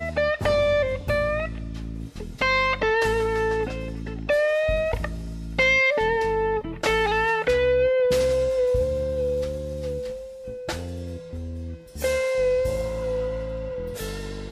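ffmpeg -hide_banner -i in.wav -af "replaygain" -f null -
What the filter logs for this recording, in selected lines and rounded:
track_gain = +4.7 dB
track_peak = 0.233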